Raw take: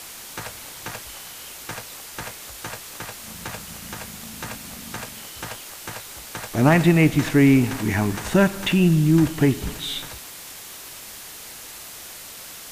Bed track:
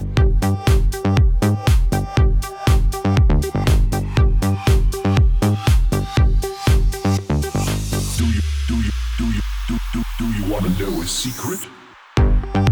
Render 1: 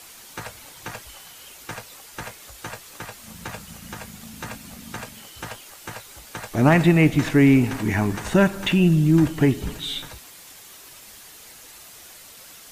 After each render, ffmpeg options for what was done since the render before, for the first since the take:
-af "afftdn=nr=7:nf=-39"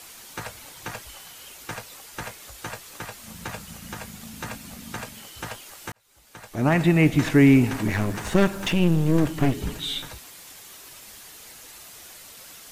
-filter_complex "[0:a]asettb=1/sr,asplit=3[a][b][c];[a]atrim=end=7.874[d];[b]atrim=start=7.87:end=9.59,asetpts=PTS-STARTPTS,afade=t=in:d=0.004:c=qsin,afade=t=out:st=1.716:d=0.004:c=qsin,aeval=exprs='clip(val(0),-1,0.0398)':c=same[e];[c]atrim=start=9.586[f];[d][e]acrossfade=d=0.004:c1=hsin:c2=qsin[g];[g][f]acrossfade=d=0.004:c1=qsin:c2=hsin,asplit=2[h][i];[h]atrim=end=5.92,asetpts=PTS-STARTPTS,afade=t=out:st=5.916:d=0.004:c=hsin[j];[i]atrim=start=5.92,asetpts=PTS-STARTPTS,afade=t=in:d=1.34[k];[j][k]concat=n=2:v=0:a=1"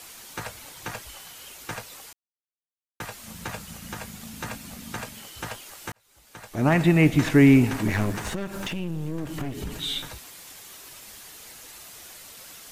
-filter_complex "[0:a]asettb=1/sr,asplit=3[a][b][c];[a]atrim=end=8.304[d];[b]atrim=start=8.3:end=9.75,asetpts=PTS-STARTPTS,afade=t=in:d=0.004:c=qsin,afade=t=out:st=1.446:d=0.004:c=qsin,acompressor=threshold=-28dB:ratio=4:attack=3.2:release=140:knee=1:detection=peak[e];[c]atrim=start=9.746[f];[d][e]acrossfade=d=0.004:c1=hsin:c2=qsin[g];[g][f]acrossfade=d=0.004:c1=qsin:c2=hsin,asplit=3[h][i][j];[h]atrim=end=2.13,asetpts=PTS-STARTPTS,afade=t=out:st=2.126:d=0.004:c=hsin[k];[i]atrim=start=2.13:end=3,asetpts=PTS-STARTPTS,volume=0[l];[j]atrim=start=3,asetpts=PTS-STARTPTS,afade=t=in:d=0.004:c=hsin[m];[k][l][m]concat=n=3:v=0:a=1"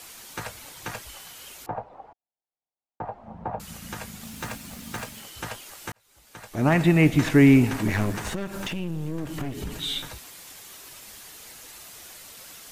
-filter_complex "[0:a]asettb=1/sr,asplit=3[a][b][c];[a]atrim=end=1.664[d];[b]atrim=start=1.66:end=3.6,asetpts=PTS-STARTPTS,afade=t=in:d=0.004:c=qsin,afade=t=out:st=1.936:d=0.004:c=qsin,lowpass=f=780:t=q:w=3.9[e];[c]atrim=start=3.596[f];[d][e]acrossfade=d=0.004:c1=hsin:c2=qsin[g];[g][f]acrossfade=d=0.004:c1=qsin:c2=hsin,asettb=1/sr,asplit=3[h][i][j];[h]atrim=end=4.234[k];[i]atrim=start=4.23:end=5.23,asetpts=PTS-STARTPTS,afade=t=in:d=0.004:c=qsin,afade=t=out:st=0.996:d=0.004:c=qsin,acrusher=bits=3:mode=log:mix=0:aa=0.000001[l];[j]atrim=start=5.226[m];[k][l]acrossfade=d=0.004:c1=hsin:c2=qsin[n];[n][m]acrossfade=d=0.004:c1=qsin:c2=hsin"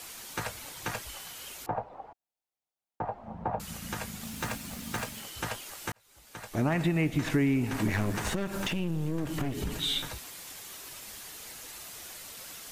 -af "acompressor=threshold=-24dB:ratio=6"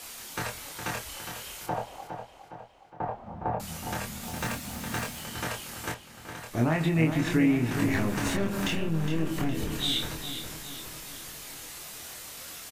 -filter_complex "[0:a]asplit=2[a][b];[b]adelay=25,volume=-3dB[c];[a][c]amix=inputs=2:normalize=0,asplit=2[d][e];[e]adelay=412,lowpass=f=4.8k:p=1,volume=-8dB,asplit=2[f][g];[g]adelay=412,lowpass=f=4.8k:p=1,volume=0.54,asplit=2[h][i];[i]adelay=412,lowpass=f=4.8k:p=1,volume=0.54,asplit=2[j][k];[k]adelay=412,lowpass=f=4.8k:p=1,volume=0.54,asplit=2[l][m];[m]adelay=412,lowpass=f=4.8k:p=1,volume=0.54,asplit=2[n][o];[o]adelay=412,lowpass=f=4.8k:p=1,volume=0.54[p];[f][h][j][l][n][p]amix=inputs=6:normalize=0[q];[d][q]amix=inputs=2:normalize=0"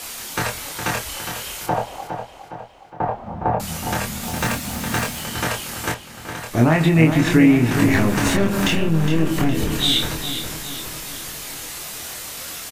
-af "volume=10dB"

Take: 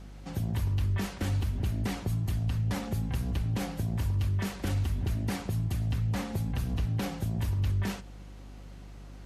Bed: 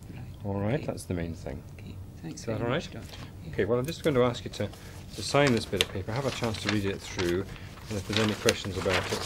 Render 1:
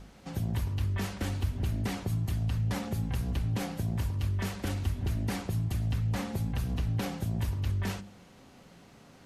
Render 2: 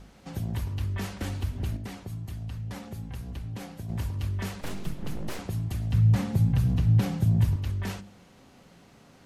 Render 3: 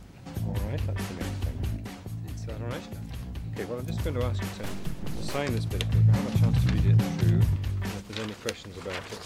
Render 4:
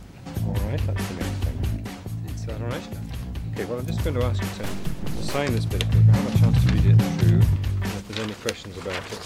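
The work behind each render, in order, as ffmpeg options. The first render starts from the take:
-af "bandreject=f=50:t=h:w=4,bandreject=f=100:t=h:w=4,bandreject=f=150:t=h:w=4,bandreject=f=200:t=h:w=4,bandreject=f=250:t=h:w=4,bandreject=f=300:t=h:w=4,bandreject=f=350:t=h:w=4"
-filter_complex "[0:a]asettb=1/sr,asplit=3[a][b][c];[a]atrim=end=4.614[d];[b]atrim=start=4.61:end=5.39,asetpts=PTS-STARTPTS,afade=t=in:d=0.004:c=qsin,afade=t=out:st=0.776:d=0.004:c=qsin,aeval=exprs='abs(val(0))':c=same[e];[c]atrim=start=5.386[f];[d][e]acrossfade=d=0.004:c1=hsin:c2=qsin[g];[g][f]acrossfade=d=0.004:c1=qsin:c2=hsin,asettb=1/sr,asplit=3[h][i][j];[h]atrim=end=5.934[k];[i]atrim=start=5.93:end=7.56,asetpts=PTS-STARTPTS,afade=t=in:d=0.004:c=qsin,afade=t=out:st=1.626:d=0.004:c=qsin,equalizer=f=130:t=o:w=1.3:g=12.5[l];[j]atrim=start=7.556[m];[k][l]acrossfade=d=0.004:c1=hsin:c2=qsin[n];[n][m]acrossfade=d=0.004:c1=qsin:c2=hsin,asplit=3[o][p][q];[o]atrim=end=1.772[r];[p]atrim=start=1.768:end=3.892,asetpts=PTS-STARTPTS,volume=-6dB[s];[q]atrim=start=3.888[t];[r][s]acrossfade=d=0.004:c1=hsin:c2=hsin[u];[u][t]acrossfade=d=0.004:c1=hsin:c2=hsin"
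-filter_complex "[1:a]volume=-8dB[a];[0:a][a]amix=inputs=2:normalize=0"
-af "volume=5dB"

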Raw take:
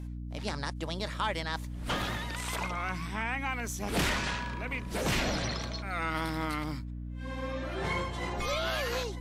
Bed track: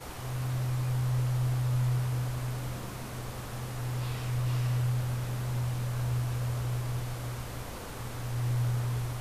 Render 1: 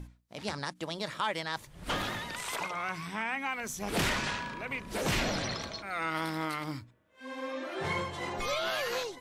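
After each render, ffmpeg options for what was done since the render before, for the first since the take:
-af "bandreject=f=60:t=h:w=6,bandreject=f=120:t=h:w=6,bandreject=f=180:t=h:w=6,bandreject=f=240:t=h:w=6,bandreject=f=300:t=h:w=6"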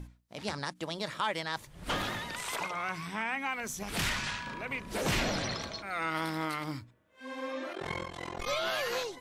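-filter_complex "[0:a]asettb=1/sr,asplit=3[a][b][c];[a]atrim=end=3.834[d];[b]atrim=start=3.83:end=4.47,asetpts=PTS-STARTPTS,afade=t=in:d=0.004:c=qsin,afade=t=out:st=0.636:d=0.004:c=qsin,equalizer=f=430:w=0.62:g=-9.5[e];[c]atrim=start=4.466[f];[d][e]acrossfade=d=0.004:c1=hsin:c2=qsin[g];[g][f]acrossfade=d=0.004:c1=qsin:c2=hsin,asplit=3[h][i][j];[h]afade=t=out:st=7.72:d=0.02[k];[i]tremolo=f=43:d=0.947,afade=t=in:st=7.72:d=0.02,afade=t=out:st=8.46:d=0.02[l];[j]afade=t=in:st=8.46:d=0.02[m];[k][l][m]amix=inputs=3:normalize=0"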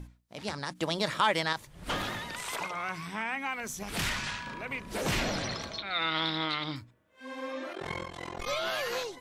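-filter_complex "[0:a]asettb=1/sr,asplit=3[a][b][c];[a]atrim=end=0.704[d];[b]atrim=start=0.7:end=1.53,asetpts=PTS-STARTPTS,afade=t=in:d=0.004:c=qsin,afade=t=out:st=0.826:d=0.004:c=qsin,acontrast=56[e];[c]atrim=start=1.526[f];[d][e]acrossfade=d=0.004:c1=hsin:c2=qsin[g];[g][f]acrossfade=d=0.004:c1=qsin:c2=hsin,asettb=1/sr,asplit=3[h][i][j];[h]atrim=end=5.784[k];[i]atrim=start=5.78:end=6.76,asetpts=PTS-STARTPTS,afade=t=in:d=0.004:c=qsin,afade=t=out:st=0.976:d=0.004:c=qsin,lowpass=f=3.7k:t=q:w=10[l];[j]atrim=start=6.756[m];[k][l]acrossfade=d=0.004:c1=hsin:c2=qsin[n];[n][m]acrossfade=d=0.004:c1=qsin:c2=hsin"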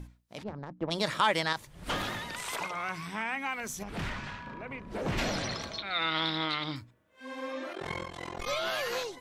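-filter_complex "[0:a]asplit=3[a][b][c];[a]afade=t=out:st=0.42:d=0.02[d];[b]adynamicsmooth=sensitivity=0.5:basefreq=600,afade=t=in:st=0.42:d=0.02,afade=t=out:st=0.9:d=0.02[e];[c]afade=t=in:st=0.9:d=0.02[f];[d][e][f]amix=inputs=3:normalize=0,asplit=3[g][h][i];[g]afade=t=out:st=3.82:d=0.02[j];[h]lowpass=f=1.1k:p=1,afade=t=in:st=3.82:d=0.02,afade=t=out:st=5.17:d=0.02[k];[i]afade=t=in:st=5.17:d=0.02[l];[j][k][l]amix=inputs=3:normalize=0"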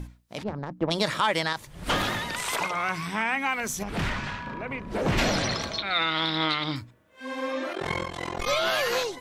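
-af "acontrast=85,alimiter=limit=-13.5dB:level=0:latency=1:release=232"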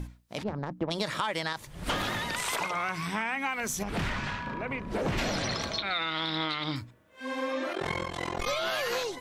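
-af "acompressor=threshold=-27dB:ratio=6"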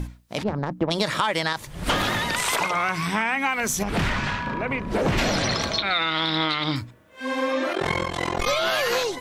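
-af "volume=7.5dB"

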